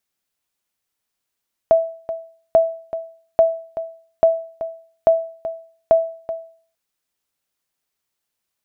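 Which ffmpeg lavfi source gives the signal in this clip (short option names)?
-f lavfi -i "aevalsrc='0.531*(sin(2*PI*657*mod(t,0.84))*exp(-6.91*mod(t,0.84)/0.47)+0.224*sin(2*PI*657*max(mod(t,0.84)-0.38,0))*exp(-6.91*max(mod(t,0.84)-0.38,0)/0.47))':d=5.04:s=44100"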